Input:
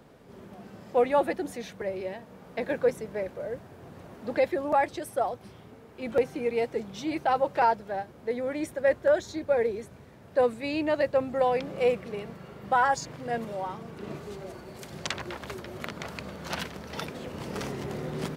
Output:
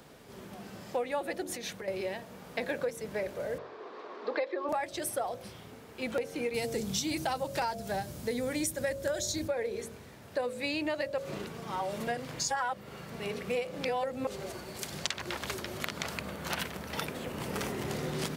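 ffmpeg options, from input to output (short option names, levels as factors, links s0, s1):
-filter_complex "[0:a]asettb=1/sr,asplit=3[s0][s1][s2];[s0]atrim=end=1.424[s3];[s1]atrim=start=1.42:end=1.88,asetpts=PTS-STARTPTS,afade=t=in:d=0.004:c=qsin,afade=t=out:st=0.456:d=0.004:c=qsin,acompressor=threshold=0.0126:ratio=6:attack=3.2:release=140:knee=1:detection=peak[s4];[s2]atrim=start=1.876[s5];[s3][s4]acrossfade=d=0.004:c1=hsin:c2=qsin[s6];[s6][s5]acrossfade=d=0.004:c1=qsin:c2=hsin,asettb=1/sr,asplit=3[s7][s8][s9];[s7]atrim=end=3.584[s10];[s8]atrim=start=3.58:end=4.69,asetpts=PTS-STARTPTS,afade=t=in:d=0.004:c=qsin,afade=t=out:st=1.106:d=0.004:c=qsin,highpass=f=310:w=0.5412,highpass=f=310:w=1.3066,equalizer=f=420:t=q:w=4:g=9,equalizer=f=1100:t=q:w=4:g=10,equalizer=f=2900:t=q:w=4:g=-4,lowpass=f=4400:w=0.5412,lowpass=f=4400:w=1.3066[s11];[s9]atrim=start=4.686[s12];[s10][s11]acrossfade=d=0.004:c1=hsin:c2=qsin[s13];[s13][s12]acrossfade=d=0.004:c1=qsin:c2=hsin,asettb=1/sr,asplit=3[s14][s15][s16];[s14]atrim=end=6.544[s17];[s15]atrim=start=6.54:end=9.48,asetpts=PTS-STARTPTS,afade=t=in:d=0.004:c=qsin,afade=t=out:st=2.936:d=0.004:c=qsin,bass=f=250:g=12,treble=f=4000:g=13[s18];[s16]atrim=start=9.476[s19];[s17][s18]acrossfade=d=0.004:c1=hsin:c2=qsin[s20];[s20][s19]acrossfade=d=0.004:c1=qsin:c2=hsin,asettb=1/sr,asplit=3[s21][s22][s23];[s21]atrim=end=16.154[s24];[s22]atrim=start=16.15:end=17.85,asetpts=PTS-STARTPTS,afade=t=in:d=0.004:c=qsin,afade=t=out:st=1.696:d=0.004:c=qsin,equalizer=f=5200:w=0.84:g=-7.5[s25];[s23]atrim=start=17.846[s26];[s24][s25]acrossfade=d=0.004:c1=hsin:c2=qsin[s27];[s27][s26]acrossfade=d=0.004:c1=qsin:c2=hsin,asplit=3[s28][s29][s30];[s28]atrim=end=11.182[s31];[s29]atrim=start=11.178:end=14.272,asetpts=PTS-STARTPTS,areverse[s32];[s30]atrim=start=14.268[s33];[s31][s32]acrossfade=d=0.004:c1=hsin:c2=hsin[s34];[s34][s33]acrossfade=d=0.004:c1=hsin:c2=hsin,highshelf=f=2300:g=10,bandreject=f=45.71:t=h:w=4,bandreject=f=91.42:t=h:w=4,bandreject=f=137.13:t=h:w=4,bandreject=f=182.84:t=h:w=4,bandreject=f=228.55:t=h:w=4,bandreject=f=274.26:t=h:w=4,bandreject=f=319.97:t=h:w=4,bandreject=f=365.68:t=h:w=4,bandreject=f=411.39:t=h:w=4,bandreject=f=457.1:t=h:w=4,bandreject=f=502.81:t=h:w=4,bandreject=f=548.52:t=h:w=4,bandreject=f=594.23:t=h:w=4,bandreject=f=639.94:t=h:w=4,bandreject=f=685.65:t=h:w=4,acompressor=threshold=0.0355:ratio=10"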